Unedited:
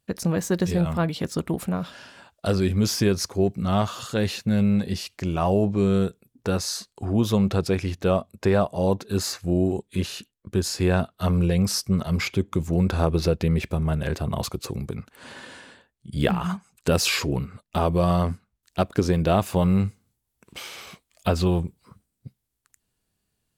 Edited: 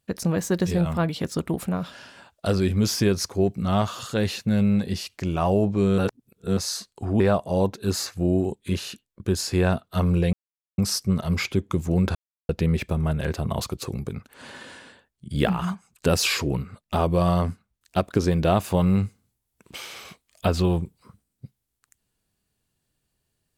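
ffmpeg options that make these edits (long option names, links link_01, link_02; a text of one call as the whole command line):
ffmpeg -i in.wav -filter_complex "[0:a]asplit=7[link_01][link_02][link_03][link_04][link_05][link_06][link_07];[link_01]atrim=end=5.982[link_08];[link_02]atrim=start=5.978:end=6.572,asetpts=PTS-STARTPTS,areverse[link_09];[link_03]atrim=start=6.568:end=7.202[link_10];[link_04]atrim=start=8.468:end=11.6,asetpts=PTS-STARTPTS,afade=type=out:start_time=3.128:duration=0.004:curve=hsin,apad=pad_dur=0.45[link_11];[link_05]atrim=start=11.6:end=12.97,asetpts=PTS-STARTPTS,afade=type=in:duration=0.004:curve=hsin,afade=type=out:start_time=1.366:duration=0.004:curve=hsin[link_12];[link_06]atrim=start=12.97:end=13.31,asetpts=PTS-STARTPTS,volume=0[link_13];[link_07]atrim=start=13.31,asetpts=PTS-STARTPTS,afade=type=in:duration=0.004:curve=hsin[link_14];[link_08][link_09]acrossfade=duration=0.004:curve1=hsin:curve2=hsin[link_15];[link_15][link_10]acrossfade=duration=0.004:curve1=hsin:curve2=hsin[link_16];[link_11][link_12][link_13][link_14]concat=n=4:v=0:a=1[link_17];[link_16][link_17]acrossfade=duration=0.004:curve1=hsin:curve2=hsin" out.wav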